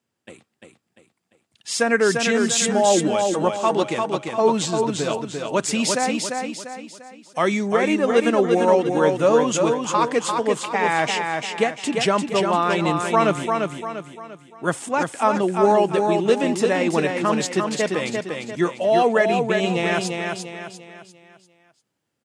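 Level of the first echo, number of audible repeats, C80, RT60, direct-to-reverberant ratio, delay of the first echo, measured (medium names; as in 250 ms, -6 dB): -4.5 dB, 4, no reverb, no reverb, no reverb, 346 ms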